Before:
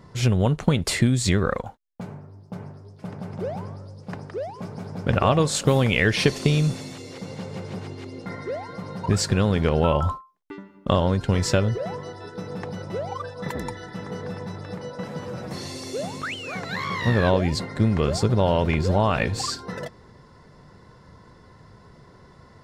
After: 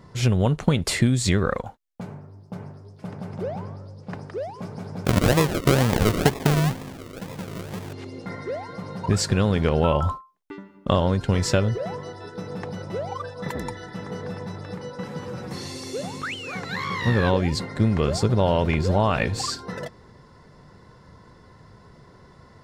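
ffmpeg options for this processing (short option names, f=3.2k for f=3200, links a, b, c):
-filter_complex "[0:a]asettb=1/sr,asplit=3[a][b][c];[a]atrim=end=3.434[d];[b]atrim=start=3.43:end=4.14,asetpts=PTS-STARTPTS,afade=t=in:d=0.004:c=qsin,afade=t=out:st=0.706:d=0.004:c=qsin,highshelf=f=8.7k:g=-11.5[e];[c]atrim=start=4.136[f];[d][e]acrossfade=d=0.004:c1=hsin:c2=qsin[g];[g][f]acrossfade=d=0.004:c1=qsin:c2=hsin,asettb=1/sr,asplit=3[h][i][j];[h]atrim=end=5.054[k];[i]atrim=start=5.05:end=7.93,asetpts=PTS-STARTPTS,afade=t=in:d=0.004:c=qsin,afade=t=out:st=2.876:d=0.004:c=qsin,acrusher=samples=42:mix=1:aa=0.000001:lfo=1:lforange=25.2:lforate=2.1[l];[j]atrim=start=7.926[m];[k][l]acrossfade=d=0.004:c1=hsin:c2=qsin[n];[n][m]acrossfade=d=0.004:c1=qsin:c2=hsin,asettb=1/sr,asplit=3[o][p][q];[o]atrim=end=14.714[r];[p]atrim=start=14.71:end=17.64,asetpts=PTS-STARTPTS,afade=t=in:d=0.004:c=qsin,afade=t=out:st=2.926:d=0.004:c=qsin,bandreject=f=640:w=5.5[s];[q]atrim=start=17.636[t];[r][s]acrossfade=d=0.004:c1=hsin:c2=qsin[u];[u][t]acrossfade=d=0.004:c1=qsin:c2=hsin"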